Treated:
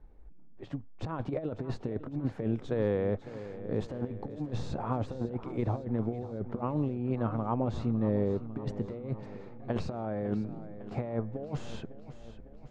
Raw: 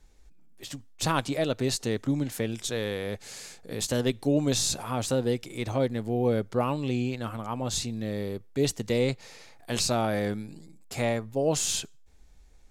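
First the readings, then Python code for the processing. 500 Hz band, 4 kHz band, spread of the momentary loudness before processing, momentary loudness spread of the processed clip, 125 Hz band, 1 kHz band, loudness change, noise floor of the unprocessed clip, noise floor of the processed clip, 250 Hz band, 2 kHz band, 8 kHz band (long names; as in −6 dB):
−5.5 dB, −21.0 dB, 13 LU, 12 LU, −2.0 dB, −5.5 dB, −5.5 dB, −53 dBFS, −48 dBFS, −3.5 dB, −13.0 dB, below −30 dB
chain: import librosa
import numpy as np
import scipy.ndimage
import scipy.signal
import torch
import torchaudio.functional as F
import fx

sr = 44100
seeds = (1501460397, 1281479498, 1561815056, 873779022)

p1 = scipy.signal.sosfilt(scipy.signal.butter(2, 1000.0, 'lowpass', fs=sr, output='sos'), x)
p2 = fx.over_compress(p1, sr, threshold_db=-31.0, ratio=-0.5)
y = p2 + fx.echo_feedback(p2, sr, ms=553, feedback_pct=58, wet_db=-14.0, dry=0)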